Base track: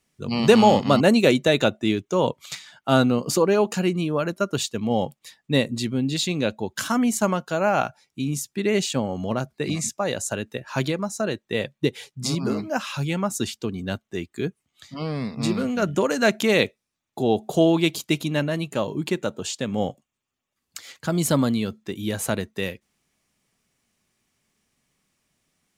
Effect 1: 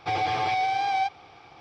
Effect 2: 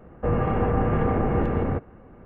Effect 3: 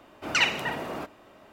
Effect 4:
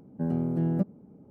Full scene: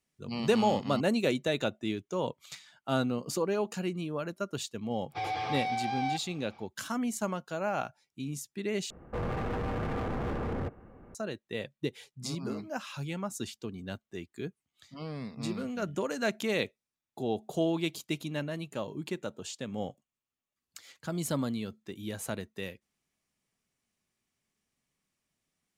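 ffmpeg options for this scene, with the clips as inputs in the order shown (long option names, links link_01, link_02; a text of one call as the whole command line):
ffmpeg -i bed.wav -i cue0.wav -i cue1.wav -filter_complex "[0:a]volume=-11dB[link_01];[2:a]volume=26dB,asoftclip=hard,volume=-26dB[link_02];[link_01]asplit=2[link_03][link_04];[link_03]atrim=end=8.904[link_05];[link_02]atrim=end=2.25,asetpts=PTS-STARTPTS,volume=-5dB[link_06];[link_04]atrim=start=11.146[link_07];[1:a]atrim=end=1.6,asetpts=PTS-STARTPTS,volume=-7.5dB,afade=type=in:duration=0.1,afade=type=out:start_time=1.5:duration=0.1,adelay=224469S[link_08];[link_05][link_06]acrossfade=duration=0.004:curve1=hsin:curve2=hsin[link_09];[link_09][link_07]acrossfade=duration=0.004:curve1=hsin:curve2=hsin[link_10];[link_10][link_08]amix=inputs=2:normalize=0" out.wav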